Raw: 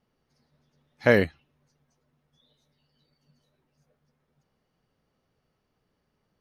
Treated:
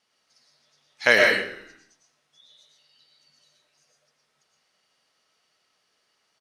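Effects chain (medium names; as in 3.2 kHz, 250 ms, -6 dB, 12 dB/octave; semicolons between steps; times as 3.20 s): frequency weighting ITU-R 468; frequency-shifting echo 94 ms, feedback 55%, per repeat -38 Hz, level -18 dB; algorithmic reverb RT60 0.55 s, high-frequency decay 0.6×, pre-delay 75 ms, DRR 0 dB; trim +2 dB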